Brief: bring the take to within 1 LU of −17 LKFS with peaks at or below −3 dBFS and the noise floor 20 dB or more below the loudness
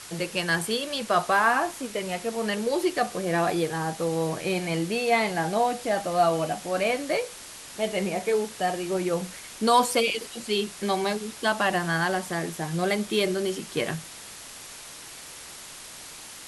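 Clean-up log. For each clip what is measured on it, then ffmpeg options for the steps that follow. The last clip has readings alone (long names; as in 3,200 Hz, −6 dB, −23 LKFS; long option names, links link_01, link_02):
background noise floor −43 dBFS; target noise floor −46 dBFS; integrated loudness −26.0 LKFS; sample peak −9.5 dBFS; target loudness −17.0 LKFS
→ -af "afftdn=noise_reduction=6:noise_floor=-43"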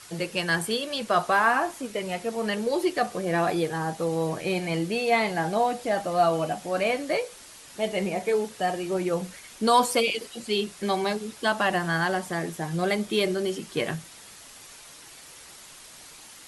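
background noise floor −47 dBFS; integrated loudness −26.5 LKFS; sample peak −9.5 dBFS; target loudness −17.0 LKFS
→ -af "volume=9.5dB,alimiter=limit=-3dB:level=0:latency=1"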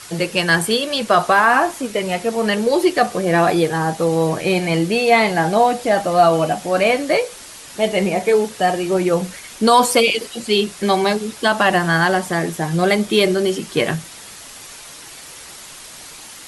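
integrated loudness −17.0 LKFS; sample peak −3.0 dBFS; background noise floor −38 dBFS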